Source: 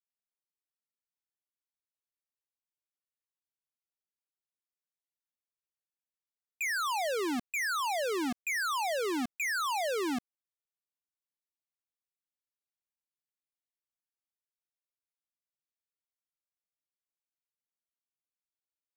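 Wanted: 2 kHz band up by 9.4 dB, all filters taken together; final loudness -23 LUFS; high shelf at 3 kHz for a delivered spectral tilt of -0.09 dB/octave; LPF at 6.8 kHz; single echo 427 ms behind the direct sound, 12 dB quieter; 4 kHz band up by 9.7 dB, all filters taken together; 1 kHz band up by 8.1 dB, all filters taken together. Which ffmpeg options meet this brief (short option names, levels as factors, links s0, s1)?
-af "lowpass=6800,equalizer=f=1000:t=o:g=7.5,equalizer=f=2000:t=o:g=6,highshelf=f=3000:g=4.5,equalizer=f=4000:t=o:g=7,aecho=1:1:427:0.251,volume=1.12"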